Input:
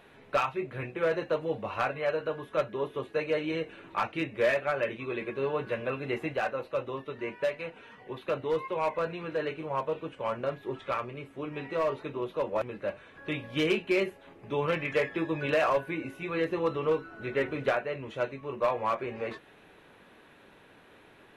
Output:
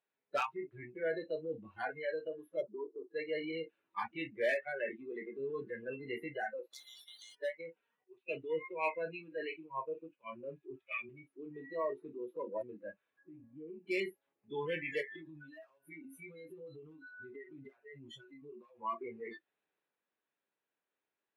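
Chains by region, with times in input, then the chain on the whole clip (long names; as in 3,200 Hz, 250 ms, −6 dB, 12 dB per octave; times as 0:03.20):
0:02.61–0:03.11: Butterworth low-pass 1,100 Hz + low-shelf EQ 210 Hz −4.5 dB
0:06.73–0:07.35: downward expander −43 dBFS + downward compressor 3 to 1, threshold −34 dBFS + every bin compressed towards the loudest bin 10 to 1
0:08.04–0:11.09: parametric band 2,500 Hz +12 dB 0.22 octaves + multiband upward and downward expander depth 70%
0:13.23–0:13.86: Bessel low-pass filter 1,400 Hz, order 4 + downward compressor 3 to 1, threshold −39 dBFS
0:15.01–0:18.80: high-shelf EQ 3,600 Hz +4.5 dB + comb filter 7.4 ms, depth 96% + downward compressor 20 to 1, threshold −35 dBFS
whole clip: noise reduction from a noise print of the clip's start 30 dB; high-pass filter 400 Hz 6 dB per octave; transient designer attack −2 dB, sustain +3 dB; level −4.5 dB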